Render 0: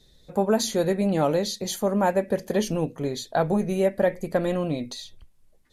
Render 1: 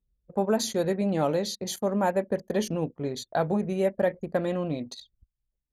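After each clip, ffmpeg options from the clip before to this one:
-af "anlmdn=2.51,highpass=51,volume=-3dB"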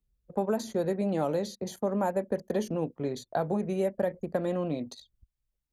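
-filter_complex "[0:a]acrossover=split=190|1500|5200[a][b][c][d];[a]acompressor=threshold=-40dB:ratio=4[e];[b]acompressor=threshold=-25dB:ratio=4[f];[c]acompressor=threshold=-52dB:ratio=4[g];[d]acompressor=threshold=-48dB:ratio=4[h];[e][f][g][h]amix=inputs=4:normalize=0"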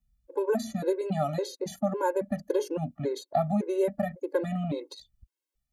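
-af "afftfilt=real='re*gt(sin(2*PI*1.8*pts/sr)*(1-2*mod(floor(b*sr/1024/280),2)),0)':imag='im*gt(sin(2*PI*1.8*pts/sr)*(1-2*mod(floor(b*sr/1024/280),2)),0)':win_size=1024:overlap=0.75,volume=4.5dB"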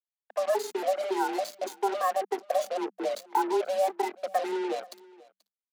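-af "acrusher=bits=5:mix=0:aa=0.5,afreqshift=190,aecho=1:1:483:0.075"

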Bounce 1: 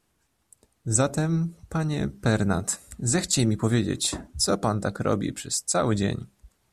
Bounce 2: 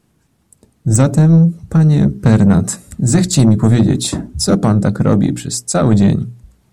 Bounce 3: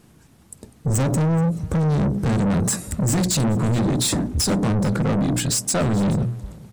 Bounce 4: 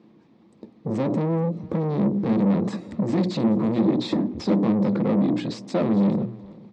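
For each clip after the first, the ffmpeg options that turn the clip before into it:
-af "equalizer=f=160:w=0.56:g=13.5,bandreject=f=60:t=h:w=6,bandreject=f=120:t=h:w=6,bandreject=f=180:t=h:w=6,bandreject=f=240:t=h:w=6,bandreject=f=300:t=h:w=6,bandreject=f=360:t=h:w=6,bandreject=f=420:t=h:w=6,acontrast=87,volume=-1dB"
-af "alimiter=limit=-13dB:level=0:latency=1:release=94,asoftclip=type=tanh:threshold=-24.5dB,aecho=1:1:429:0.0841,volume=7dB"
-af "highpass=190,equalizer=f=210:t=q:w=4:g=9,equalizer=f=330:t=q:w=4:g=9,equalizer=f=510:t=q:w=4:g=5,equalizer=f=1k:t=q:w=4:g=3,equalizer=f=1.5k:t=q:w=4:g=-9,equalizer=f=2.9k:t=q:w=4:g=-6,lowpass=f=3.9k:w=0.5412,lowpass=f=3.9k:w=1.3066,volume=-4dB"

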